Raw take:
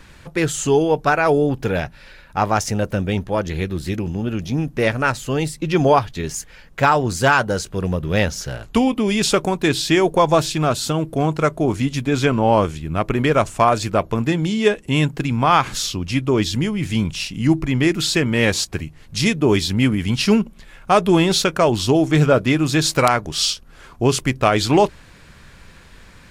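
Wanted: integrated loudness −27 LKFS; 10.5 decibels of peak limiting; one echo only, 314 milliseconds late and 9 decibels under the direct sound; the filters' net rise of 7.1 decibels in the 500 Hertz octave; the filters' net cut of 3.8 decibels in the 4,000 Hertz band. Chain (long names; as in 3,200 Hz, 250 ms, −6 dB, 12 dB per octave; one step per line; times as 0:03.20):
parametric band 500 Hz +9 dB
parametric band 4,000 Hz −5 dB
brickwall limiter −8 dBFS
single-tap delay 314 ms −9 dB
level −8.5 dB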